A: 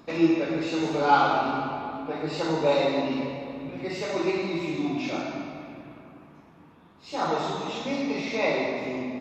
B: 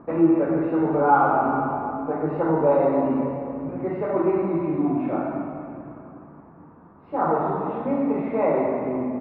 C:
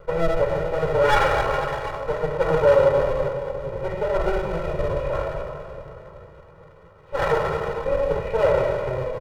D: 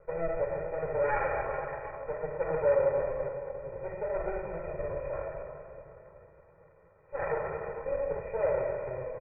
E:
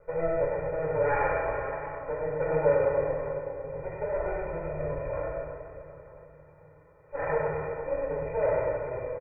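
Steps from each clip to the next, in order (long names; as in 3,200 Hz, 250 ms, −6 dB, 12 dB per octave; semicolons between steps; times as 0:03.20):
low-pass filter 1,400 Hz 24 dB per octave; in parallel at −0.5 dB: brickwall limiter −19 dBFS, peak gain reduction 11 dB
lower of the sound and its delayed copy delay 1.6 ms; comb filter 2.1 ms, depth 98%
Chebyshev low-pass with heavy ripple 2,500 Hz, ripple 6 dB; level −8.5 dB
single-tap delay 99 ms −6 dB; feedback delay network reverb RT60 0.45 s, low-frequency decay 1.55×, high-frequency decay 1×, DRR 2 dB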